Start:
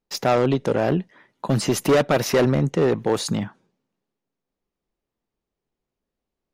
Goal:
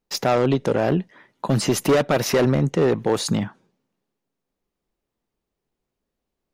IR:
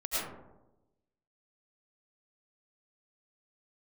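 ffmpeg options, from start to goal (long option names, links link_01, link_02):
-af "alimiter=limit=-14dB:level=0:latency=1:release=180,volume=2.5dB"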